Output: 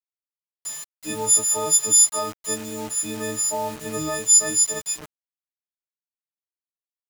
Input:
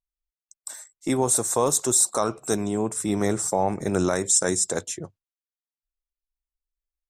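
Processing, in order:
every partial snapped to a pitch grid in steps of 6 semitones
bit reduction 5 bits
level −7.5 dB

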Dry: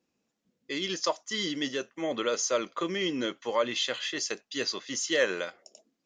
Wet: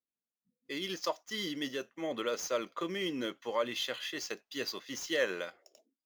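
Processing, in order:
running median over 5 samples
noise reduction from a noise print of the clip's start 20 dB
level −5 dB

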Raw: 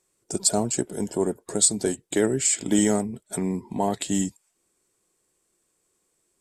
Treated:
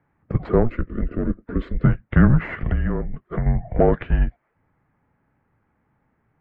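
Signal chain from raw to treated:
in parallel at +2 dB: brickwall limiter −16.5 dBFS, peak gain reduction 10.5 dB
0:02.69–0:03.46: on the sum: downward compressor 6 to 1, threshold −20 dBFS, peak gain reduction 8.5 dB
harmonic generator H 8 −28 dB, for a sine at −3 dBFS
single-sideband voice off tune −240 Hz 220–2,200 Hz
0:00.69–0:01.84: phaser with its sweep stopped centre 330 Hz, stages 4
level +4.5 dB

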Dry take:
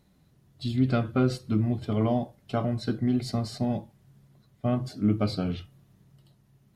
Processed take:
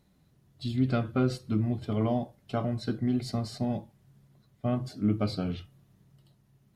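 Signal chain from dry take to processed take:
level −2.5 dB

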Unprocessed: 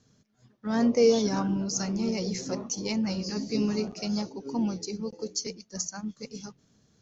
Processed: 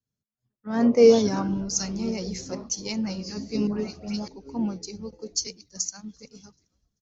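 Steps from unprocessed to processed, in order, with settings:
0:03.67–0:04.28: all-pass dispersion highs, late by 125 ms, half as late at 1,700 Hz
echo with shifted repeats 388 ms, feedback 50%, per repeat −130 Hz, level −22.5 dB
multiband upward and downward expander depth 70%

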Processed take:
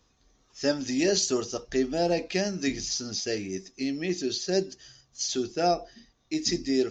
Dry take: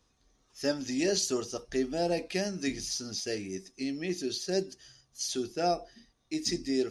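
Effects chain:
downsampling to 16,000 Hz
level +4 dB

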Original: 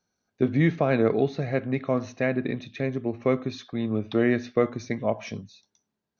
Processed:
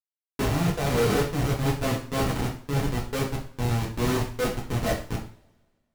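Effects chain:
running median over 25 samples
comparator with hysteresis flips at −30 dBFS
brickwall limiter −25 dBFS, peak gain reduction 4 dB
coupled-rooms reverb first 0.43 s, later 1.7 s, from −25 dB, DRR −3 dB
wrong playback speed 24 fps film run at 25 fps

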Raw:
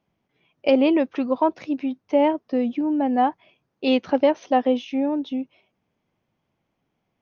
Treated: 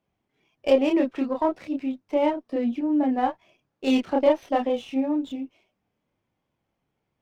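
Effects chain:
multi-voice chorus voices 4, 0.34 Hz, delay 28 ms, depth 2.1 ms
windowed peak hold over 3 samples

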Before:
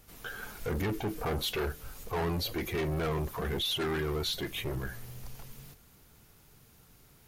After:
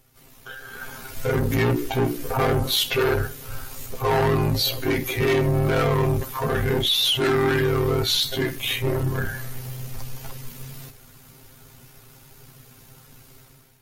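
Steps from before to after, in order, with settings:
automatic gain control gain up to 12 dB
time stretch by overlap-add 1.9×, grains 32 ms

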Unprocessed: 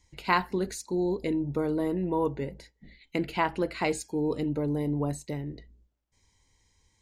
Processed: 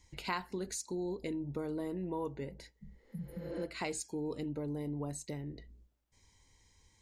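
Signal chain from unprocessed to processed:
healed spectral selection 0:02.83–0:03.61, 230–9,300 Hz both
dynamic equaliser 7,100 Hz, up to +8 dB, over −53 dBFS, Q 0.74
downward compressor 2 to 1, threshold −45 dBFS, peak gain reduction 14.5 dB
level +1 dB

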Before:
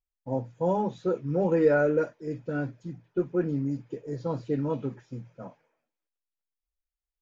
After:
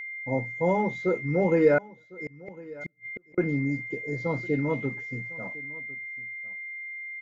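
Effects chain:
steady tone 2,100 Hz −36 dBFS
0:01.78–0:03.38: gate with flip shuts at −26 dBFS, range −40 dB
single-tap delay 1,054 ms −21 dB
level +1.5 dB

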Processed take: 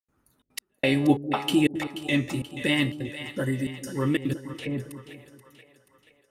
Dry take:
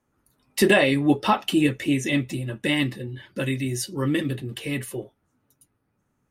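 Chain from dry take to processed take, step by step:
tuned comb filter 84 Hz, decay 0.91 s, harmonics all, mix 50%
0:03.27–0:03.88: healed spectral selection 2,100–4,900 Hz
gate pattern ".xxxx.x...xxxx." 180 BPM −60 dB
0:04.51–0:04.91: treble cut that deepens with the level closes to 940 Hz, closed at −32.5 dBFS
echo with a time of its own for lows and highs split 510 Hz, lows 201 ms, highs 481 ms, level −11.5 dB
level +4.5 dB

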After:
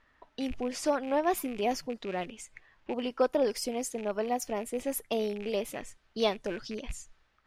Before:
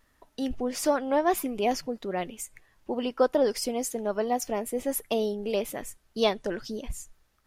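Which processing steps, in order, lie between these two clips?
loose part that buzzes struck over −41 dBFS, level −33 dBFS
low-pass that shuts in the quiet parts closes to 2,500 Hz, open at −24.5 dBFS
one half of a high-frequency compander encoder only
level −3.5 dB

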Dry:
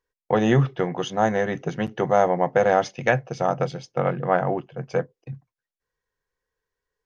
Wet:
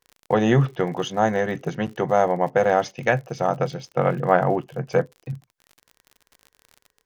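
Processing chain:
speech leveller 2 s
surface crackle 54 per second −35 dBFS

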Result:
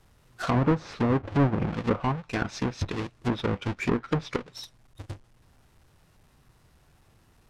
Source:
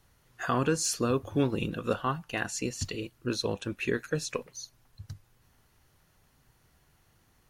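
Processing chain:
each half-wave held at its own peak
treble cut that deepens with the level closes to 1,600 Hz, closed at −21.5 dBFS
formants moved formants −2 semitones

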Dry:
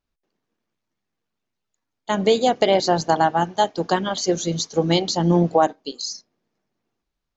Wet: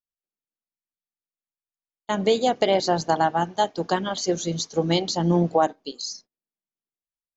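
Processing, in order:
noise gate −44 dBFS, range −23 dB
level −3 dB

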